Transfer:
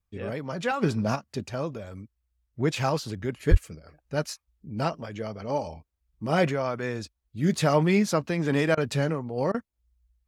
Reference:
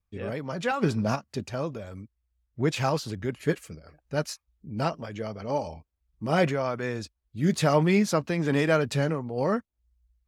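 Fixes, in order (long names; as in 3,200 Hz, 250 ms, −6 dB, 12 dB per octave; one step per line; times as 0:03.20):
0:03.50–0:03.62: high-pass filter 140 Hz 24 dB per octave
repair the gap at 0:08.75/0:09.52, 22 ms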